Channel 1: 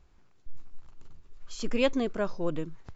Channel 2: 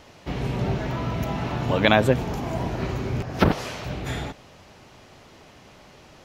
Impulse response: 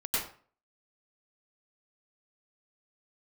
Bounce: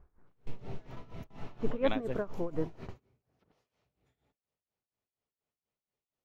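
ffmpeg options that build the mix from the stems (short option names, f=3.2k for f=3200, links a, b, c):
-filter_complex "[0:a]lowpass=f=1.7k:w=0.5412,lowpass=f=1.7k:w=1.3066,volume=0.5dB,asplit=2[a][b];[1:a]bandreject=f=1.6k:w=19,volume=-17.5dB[c];[b]apad=whole_len=275540[d];[c][d]sidechaingate=range=-26dB:threshold=-45dB:ratio=16:detection=peak[e];[a][e]amix=inputs=2:normalize=0,equalizer=f=450:w=6.2:g=5,tremolo=f=4.2:d=0.85"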